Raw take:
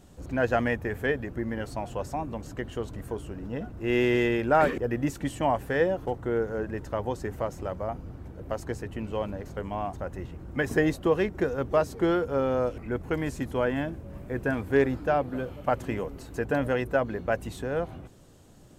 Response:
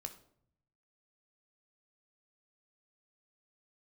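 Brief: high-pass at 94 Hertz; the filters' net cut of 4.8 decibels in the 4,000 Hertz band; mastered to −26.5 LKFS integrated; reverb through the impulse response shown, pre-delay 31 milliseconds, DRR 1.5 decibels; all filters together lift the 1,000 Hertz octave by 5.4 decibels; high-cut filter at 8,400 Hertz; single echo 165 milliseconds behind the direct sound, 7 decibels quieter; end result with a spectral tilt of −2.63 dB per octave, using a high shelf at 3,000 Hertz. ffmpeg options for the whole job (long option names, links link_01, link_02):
-filter_complex "[0:a]highpass=94,lowpass=8400,equalizer=frequency=1000:width_type=o:gain=8.5,highshelf=frequency=3000:gain=-5.5,equalizer=frequency=4000:width_type=o:gain=-3.5,aecho=1:1:165:0.447,asplit=2[link_01][link_02];[1:a]atrim=start_sample=2205,adelay=31[link_03];[link_02][link_03]afir=irnorm=-1:irlink=0,volume=2dB[link_04];[link_01][link_04]amix=inputs=2:normalize=0,volume=-2.5dB"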